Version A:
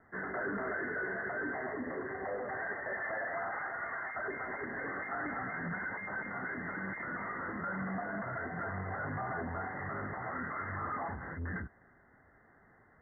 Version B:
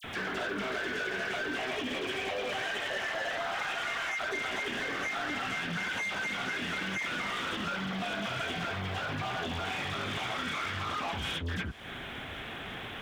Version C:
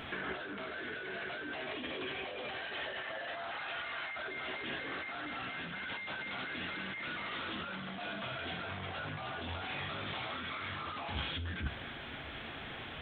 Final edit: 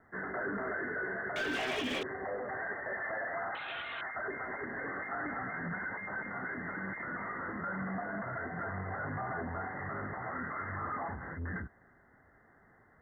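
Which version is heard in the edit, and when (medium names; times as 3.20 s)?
A
1.36–2.03 s: from B
3.55–4.01 s: from C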